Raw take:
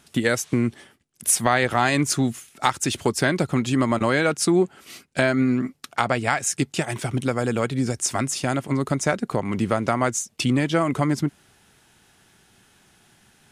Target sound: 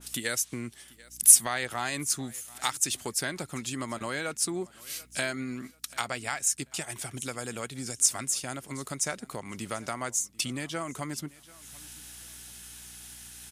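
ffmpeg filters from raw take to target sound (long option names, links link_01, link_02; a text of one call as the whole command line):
ffmpeg -i in.wav -filter_complex "[0:a]aeval=exprs='val(0)+0.00282*(sin(2*PI*60*n/s)+sin(2*PI*2*60*n/s)/2+sin(2*PI*3*60*n/s)/3+sin(2*PI*4*60*n/s)/4+sin(2*PI*5*60*n/s)/5)':channel_layout=same,acompressor=mode=upward:threshold=-28dB:ratio=2.5,crystalizer=i=9:c=0,asplit=2[link_01][link_02];[link_02]aecho=0:1:738|1476:0.0708|0.0212[link_03];[link_01][link_03]amix=inputs=2:normalize=0,adynamicequalizer=threshold=0.0398:dfrequency=1800:dqfactor=0.7:tfrequency=1800:tqfactor=0.7:attack=5:release=100:ratio=0.375:range=4:mode=cutabove:tftype=highshelf,volume=-16dB" out.wav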